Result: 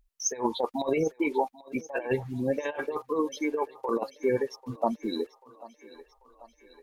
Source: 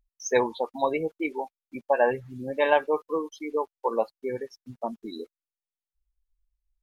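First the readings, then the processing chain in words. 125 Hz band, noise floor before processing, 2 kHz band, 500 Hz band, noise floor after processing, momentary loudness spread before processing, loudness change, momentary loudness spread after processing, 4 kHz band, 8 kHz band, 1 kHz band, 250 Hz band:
+5.0 dB, under -85 dBFS, -5.0 dB, -3.0 dB, -66 dBFS, 15 LU, -2.5 dB, 8 LU, +0.5 dB, n/a, -4.0 dB, +3.5 dB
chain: negative-ratio compressor -28 dBFS, ratio -0.5; on a send: thinning echo 0.79 s, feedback 66%, high-pass 410 Hz, level -18 dB; on the sum: gain +2 dB

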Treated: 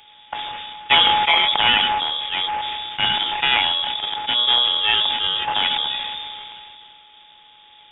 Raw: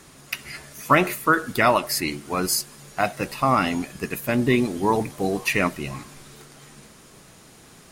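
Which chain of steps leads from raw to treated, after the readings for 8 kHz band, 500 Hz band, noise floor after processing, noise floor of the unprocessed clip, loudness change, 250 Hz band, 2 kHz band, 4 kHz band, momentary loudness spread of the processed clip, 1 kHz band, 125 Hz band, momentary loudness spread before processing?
under -40 dB, -10.5 dB, -49 dBFS, -49 dBFS, +5.5 dB, -15.5 dB, +3.5 dB, +18.5 dB, 16 LU, +3.0 dB, -13.0 dB, 14 LU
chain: sample sorter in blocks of 16 samples; inverted band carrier 3600 Hz; sustainer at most 22 dB/s; gain +1 dB

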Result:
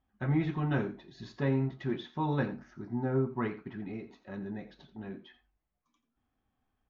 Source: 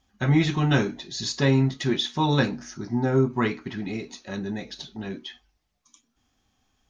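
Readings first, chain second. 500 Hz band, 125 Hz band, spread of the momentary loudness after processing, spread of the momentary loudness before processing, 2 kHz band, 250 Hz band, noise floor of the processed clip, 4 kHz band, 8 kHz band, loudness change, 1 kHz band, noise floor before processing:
-8.5 dB, -8.5 dB, 15 LU, 14 LU, -11.5 dB, -8.5 dB, -83 dBFS, -21.0 dB, n/a, -9.0 dB, -8.5 dB, -73 dBFS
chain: LPF 1800 Hz 12 dB/oct; on a send: echo 85 ms -15 dB; on the sum: gain -8.5 dB

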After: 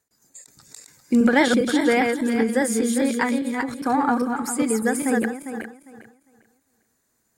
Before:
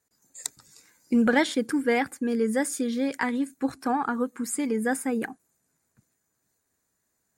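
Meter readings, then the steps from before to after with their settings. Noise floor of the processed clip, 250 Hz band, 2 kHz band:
-70 dBFS, +5.5 dB, +5.5 dB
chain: regenerating reverse delay 0.201 s, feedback 46%, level -3 dB; ending taper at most 110 dB/s; gain +4 dB

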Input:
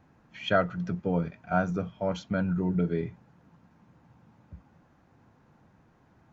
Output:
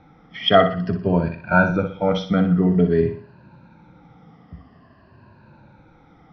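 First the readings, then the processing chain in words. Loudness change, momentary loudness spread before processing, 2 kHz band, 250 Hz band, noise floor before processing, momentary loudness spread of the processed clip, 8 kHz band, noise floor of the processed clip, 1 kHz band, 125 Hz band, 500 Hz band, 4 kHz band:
+10.5 dB, 6 LU, +11.5 dB, +10.0 dB, -63 dBFS, 8 LU, n/a, -52 dBFS, +10.5 dB, +9.5 dB, +11.0 dB, +15.5 dB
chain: moving spectral ripple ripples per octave 1.4, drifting -0.5 Hz, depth 15 dB; steep low-pass 5400 Hz 72 dB/oct; on a send: flutter echo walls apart 10.4 m, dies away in 0.42 s; on the sum: gain +8 dB

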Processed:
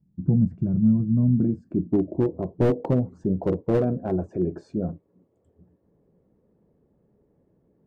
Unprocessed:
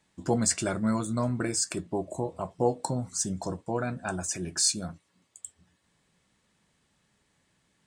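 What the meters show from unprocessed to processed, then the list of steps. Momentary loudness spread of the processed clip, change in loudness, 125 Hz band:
8 LU, +5.0 dB, +10.0 dB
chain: low-pass sweep 170 Hz -> 450 Hz, 0.99–2.84; slew limiter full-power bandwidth 25 Hz; gain +7 dB

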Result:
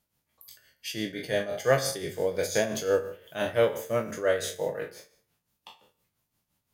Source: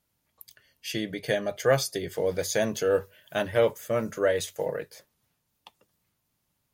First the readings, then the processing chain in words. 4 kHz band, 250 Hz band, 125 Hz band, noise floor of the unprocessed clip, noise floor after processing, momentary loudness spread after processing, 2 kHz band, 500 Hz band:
-0.5 dB, -2.0 dB, -2.0 dB, -77 dBFS, -81 dBFS, 11 LU, -0.5 dB, -1.0 dB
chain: spectral trails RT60 0.50 s; tremolo 5.8 Hz, depth 64%; de-hum 90.44 Hz, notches 30

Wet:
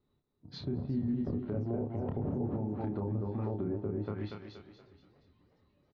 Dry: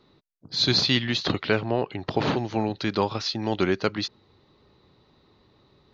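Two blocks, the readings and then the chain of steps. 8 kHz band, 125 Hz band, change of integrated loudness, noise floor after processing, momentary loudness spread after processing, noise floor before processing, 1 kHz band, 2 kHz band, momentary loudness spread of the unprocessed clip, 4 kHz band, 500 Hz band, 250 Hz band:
n/a, -4.0 dB, -10.5 dB, -77 dBFS, 9 LU, -62 dBFS, -16.5 dB, -28.0 dB, 8 LU, under -25 dB, -10.5 dB, -6.5 dB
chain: on a send: feedback echo 0.237 s, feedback 39%, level -5 dB; on the sum: flange 0.95 Hz, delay 0.2 ms, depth 3.5 ms, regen +77%; low shelf 180 Hz +10 dB; spectral noise reduction 11 dB; resonator 81 Hz, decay 0.19 s, harmonics odd, mix 60%; treble ducked by the level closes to 500 Hz, closed at -28.5 dBFS; high shelf 3200 Hz -11 dB; doubler 29 ms -3.5 dB; limiter -25.5 dBFS, peak gain reduction 8.5 dB; warbling echo 0.358 s, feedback 57%, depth 175 cents, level -22 dB

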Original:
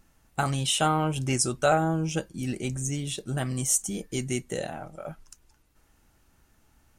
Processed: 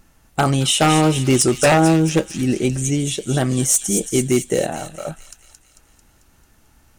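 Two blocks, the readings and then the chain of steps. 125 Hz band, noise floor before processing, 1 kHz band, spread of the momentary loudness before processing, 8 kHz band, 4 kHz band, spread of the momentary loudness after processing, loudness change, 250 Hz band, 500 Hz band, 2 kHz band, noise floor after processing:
+9.5 dB, -65 dBFS, +7.5 dB, 13 LU, +9.0 dB, +9.0 dB, 12 LU, +10.0 dB, +12.5 dB, +11.0 dB, +9.5 dB, -56 dBFS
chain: dynamic EQ 370 Hz, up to +7 dB, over -40 dBFS, Q 0.89; wavefolder -15.5 dBFS; thin delay 0.222 s, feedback 56%, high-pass 3000 Hz, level -6 dB; gain +8 dB

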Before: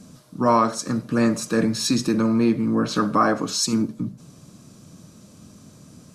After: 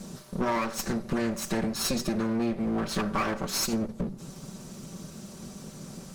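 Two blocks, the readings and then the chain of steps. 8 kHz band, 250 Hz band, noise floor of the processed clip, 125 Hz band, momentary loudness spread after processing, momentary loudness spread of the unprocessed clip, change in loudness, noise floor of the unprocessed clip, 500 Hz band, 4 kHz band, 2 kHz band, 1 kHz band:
-5.0 dB, -8.5 dB, -46 dBFS, -6.5 dB, 15 LU, 5 LU, -8.0 dB, -49 dBFS, -7.5 dB, -5.5 dB, -4.5 dB, -9.5 dB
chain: minimum comb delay 5.2 ms; compressor 4:1, threshold -33 dBFS, peak gain reduction 15 dB; gain +5.5 dB

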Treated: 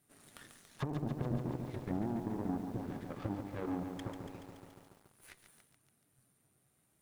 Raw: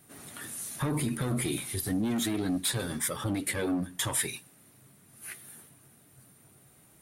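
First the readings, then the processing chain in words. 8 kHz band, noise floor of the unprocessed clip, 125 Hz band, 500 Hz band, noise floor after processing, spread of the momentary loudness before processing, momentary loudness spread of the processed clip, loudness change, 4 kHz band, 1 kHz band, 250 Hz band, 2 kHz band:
-28.0 dB, -60 dBFS, -5.5 dB, -6.5 dB, -75 dBFS, 15 LU, 21 LU, -8.5 dB, -21.5 dB, -5.0 dB, -7.0 dB, -16.0 dB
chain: treble ducked by the level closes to 430 Hz, closed at -26 dBFS; in parallel at 0 dB: compressor 6:1, threshold -40 dBFS, peak gain reduction 13 dB; on the sum: added harmonics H 3 -11 dB, 4 -43 dB, 8 -30 dB, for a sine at -19.5 dBFS; lo-fi delay 0.142 s, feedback 80%, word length 9-bit, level -7 dB; gain -5 dB

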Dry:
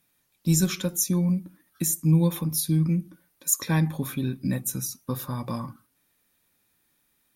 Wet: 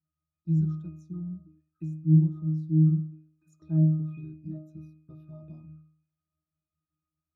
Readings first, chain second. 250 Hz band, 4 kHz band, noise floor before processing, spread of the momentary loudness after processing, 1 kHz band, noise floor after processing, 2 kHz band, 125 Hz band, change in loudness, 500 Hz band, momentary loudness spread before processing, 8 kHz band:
-2.5 dB, under -40 dB, -70 dBFS, 19 LU, under -25 dB, under -85 dBFS, under -25 dB, 0.0 dB, -0.5 dB, under -10 dB, 10 LU, under -40 dB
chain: envelope phaser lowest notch 470 Hz, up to 2500 Hz, full sweep at -23.5 dBFS; octave resonator D#, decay 0.55 s; gain +6 dB

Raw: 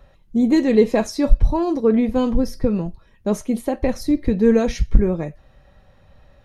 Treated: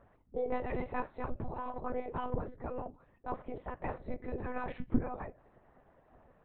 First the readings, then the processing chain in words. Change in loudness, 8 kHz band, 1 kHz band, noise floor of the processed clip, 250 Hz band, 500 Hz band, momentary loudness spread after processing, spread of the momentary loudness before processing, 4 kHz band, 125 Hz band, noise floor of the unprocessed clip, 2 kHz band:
-20.0 dB, under -40 dB, -8.5 dB, -67 dBFS, -23.0 dB, -19.5 dB, 8 LU, 9 LU, under -25 dB, -17.5 dB, -53 dBFS, -12.5 dB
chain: LPF 1100 Hz 12 dB/oct; spectral gate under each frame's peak -15 dB weak; monotone LPC vocoder at 8 kHz 250 Hz; gain -1.5 dB

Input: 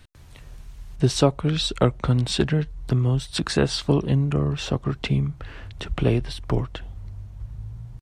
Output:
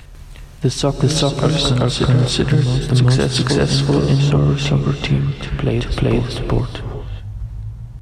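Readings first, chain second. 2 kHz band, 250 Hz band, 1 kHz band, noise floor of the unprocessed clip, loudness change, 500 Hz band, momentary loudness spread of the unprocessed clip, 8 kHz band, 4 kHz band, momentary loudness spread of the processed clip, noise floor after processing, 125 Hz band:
+7.5 dB, +7.0 dB, +6.0 dB, -45 dBFS, +7.0 dB, +6.0 dB, 17 LU, +8.0 dB, +8.0 dB, 15 LU, -36 dBFS, +8.0 dB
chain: reverse echo 0.386 s -3 dB; non-linear reverb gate 0.45 s rising, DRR 9 dB; maximiser +9.5 dB; gain -3.5 dB

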